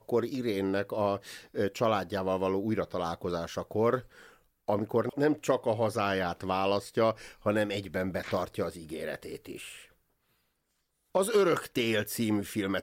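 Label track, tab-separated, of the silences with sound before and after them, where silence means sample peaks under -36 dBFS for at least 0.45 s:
4.000000	4.680000	silence
9.720000	11.150000	silence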